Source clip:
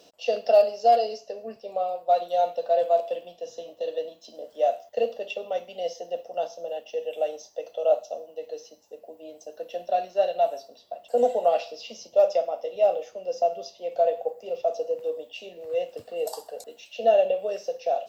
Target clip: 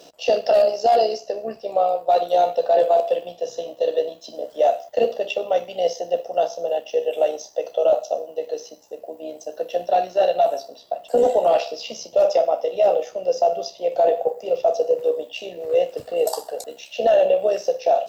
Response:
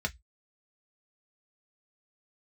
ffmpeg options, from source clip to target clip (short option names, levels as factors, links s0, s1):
-filter_complex "[0:a]asplit=2[s0][s1];[1:a]atrim=start_sample=2205,lowpass=8200[s2];[s1][s2]afir=irnorm=-1:irlink=0,volume=0.106[s3];[s0][s3]amix=inputs=2:normalize=0,apsyclip=9.44,tremolo=f=66:d=0.462,volume=0.355"